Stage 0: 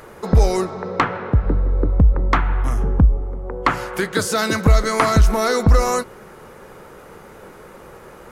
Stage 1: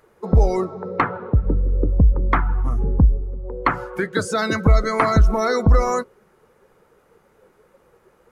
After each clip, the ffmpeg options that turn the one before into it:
-af "afftdn=nr=16:nf=-25,volume=-1dB"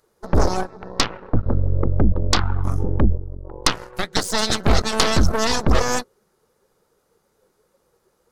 -af "aeval=exprs='0.596*(cos(1*acos(clip(val(0)/0.596,-1,1)))-cos(1*PI/2))+0.133*(cos(3*acos(clip(val(0)/0.596,-1,1)))-cos(3*PI/2))+0.0211*(cos(5*acos(clip(val(0)/0.596,-1,1)))-cos(5*PI/2))+0.211*(cos(6*acos(clip(val(0)/0.596,-1,1)))-cos(6*PI/2))':c=same,highshelf=f=3.3k:t=q:w=1.5:g=8.5,volume=-3dB"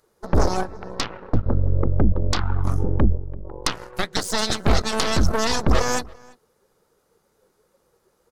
-filter_complex "[0:a]alimiter=limit=-8.5dB:level=0:latency=1:release=203,asplit=2[a][b];[b]adelay=338.2,volume=-24dB,highshelf=f=4k:g=-7.61[c];[a][c]amix=inputs=2:normalize=0"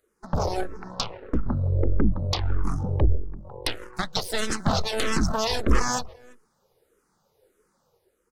-filter_complex "[0:a]dynaudnorm=f=100:g=9:m=5dB,asplit=2[a][b];[b]afreqshift=-1.6[c];[a][c]amix=inputs=2:normalize=1,volume=-4.5dB"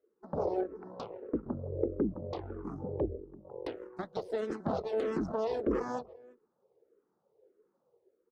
-af "bandpass=f=410:t=q:w=1.8:csg=0"

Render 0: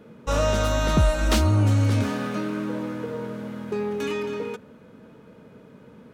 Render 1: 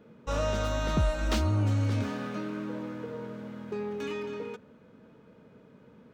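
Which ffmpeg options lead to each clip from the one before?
-af "equalizer=f=11k:t=o:w=0.77:g=-9.5,volume=-7dB"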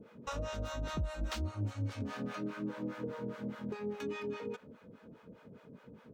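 -filter_complex "[0:a]acompressor=threshold=-36dB:ratio=6,acrossover=split=590[a][b];[a]aeval=exprs='val(0)*(1-1/2+1/2*cos(2*PI*4.9*n/s))':c=same[c];[b]aeval=exprs='val(0)*(1-1/2-1/2*cos(2*PI*4.9*n/s))':c=same[d];[c][d]amix=inputs=2:normalize=0,volume=5dB"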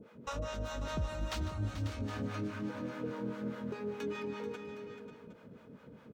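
-af "aecho=1:1:150|436|542|765:0.2|0.266|0.282|0.178"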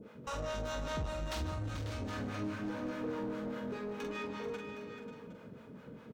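-filter_complex "[0:a]asoftclip=type=tanh:threshold=-36dB,asplit=2[a][b];[b]adelay=45,volume=-5dB[c];[a][c]amix=inputs=2:normalize=0,volume=2dB"

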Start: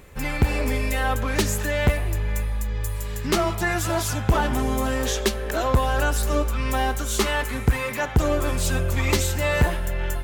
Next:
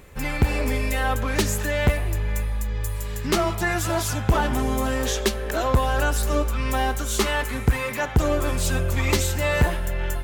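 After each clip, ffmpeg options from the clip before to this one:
-af anull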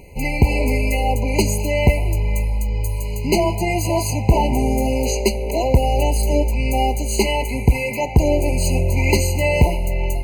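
-af "afftfilt=real='re*eq(mod(floor(b*sr/1024/1000),2),0)':imag='im*eq(mod(floor(b*sr/1024/1000),2),0)':win_size=1024:overlap=0.75,volume=5.5dB"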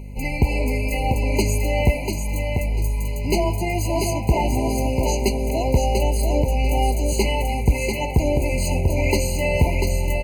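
-af "aeval=exprs='val(0)+0.0355*(sin(2*PI*50*n/s)+sin(2*PI*2*50*n/s)/2+sin(2*PI*3*50*n/s)/3+sin(2*PI*4*50*n/s)/4+sin(2*PI*5*50*n/s)/5)':c=same,aecho=1:1:692|1384|2076:0.562|0.135|0.0324,volume=-4dB"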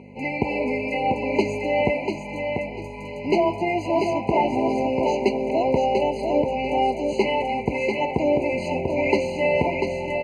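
-af "highpass=250,lowpass=2.4k,volume=3dB"

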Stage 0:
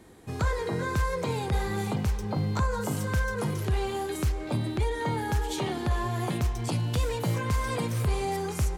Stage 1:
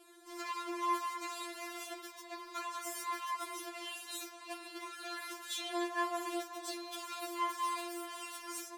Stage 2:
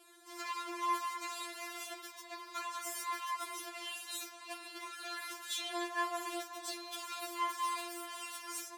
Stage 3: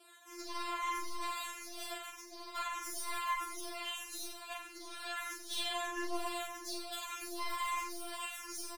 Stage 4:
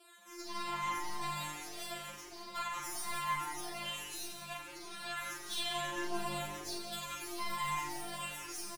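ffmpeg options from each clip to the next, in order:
-af "asoftclip=type=hard:threshold=-31dB,highpass=f=890:p=1,afftfilt=real='re*4*eq(mod(b,16),0)':imag='im*4*eq(mod(b,16),0)':win_size=2048:overlap=0.75,volume=1.5dB"
-af "lowshelf=f=480:g=-9.5,volume=1.5dB"
-filter_complex "[0:a]aeval=exprs='(tanh(56.2*val(0)+0.7)-tanh(0.7))/56.2':c=same,asplit=2[a][b];[b]aecho=0:1:40|88|145.6|214.7|297.7:0.631|0.398|0.251|0.158|0.1[c];[a][c]amix=inputs=2:normalize=0,asplit=2[d][e];[e]adelay=2.6,afreqshift=1.6[f];[d][f]amix=inputs=2:normalize=1,volume=5dB"
-filter_complex "[0:a]asplit=5[a][b][c][d][e];[b]adelay=177,afreqshift=-150,volume=-10dB[f];[c]adelay=354,afreqshift=-300,volume=-18dB[g];[d]adelay=531,afreqshift=-450,volume=-25.9dB[h];[e]adelay=708,afreqshift=-600,volume=-33.9dB[i];[a][f][g][h][i]amix=inputs=5:normalize=0"

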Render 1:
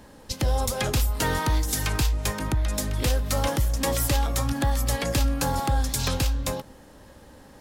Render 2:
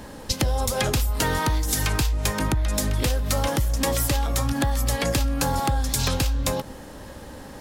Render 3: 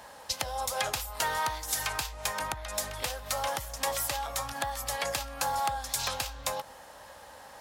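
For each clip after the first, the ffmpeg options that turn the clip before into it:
-af "acompressor=threshold=-29dB:ratio=6,volume=9dB"
-af "highpass=41,lowshelf=f=470:t=q:w=1.5:g=-14,volume=-5.5dB"

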